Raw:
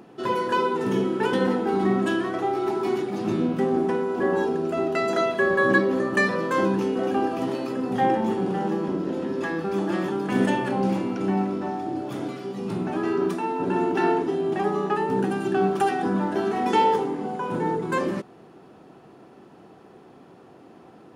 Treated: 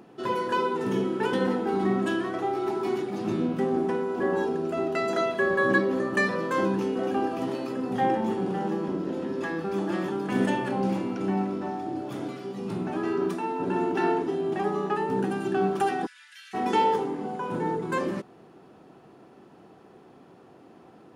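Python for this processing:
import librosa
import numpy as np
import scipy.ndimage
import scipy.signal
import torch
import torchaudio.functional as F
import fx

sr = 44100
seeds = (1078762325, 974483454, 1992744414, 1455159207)

y = fx.steep_highpass(x, sr, hz=1900.0, slope=36, at=(16.05, 16.53), fade=0.02)
y = F.gain(torch.from_numpy(y), -3.0).numpy()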